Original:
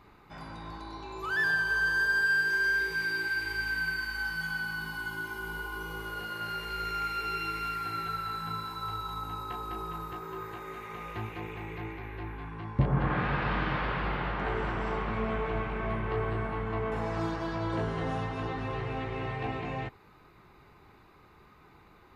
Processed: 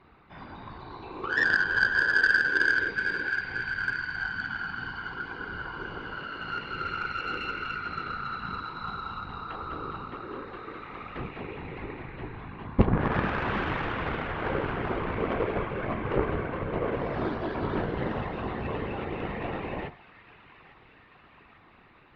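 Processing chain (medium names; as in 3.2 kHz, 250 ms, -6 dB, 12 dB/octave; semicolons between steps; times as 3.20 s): low-pass 3.8 kHz 24 dB/octave; de-hum 46.17 Hz, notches 28; dynamic bell 400 Hz, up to +4 dB, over -45 dBFS, Q 1.9; feedback echo behind a high-pass 848 ms, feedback 66%, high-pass 1.5 kHz, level -14 dB; whisper effect; Chebyshev shaper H 3 -14 dB, 8 -44 dB, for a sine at -13.5 dBFS; trim +8 dB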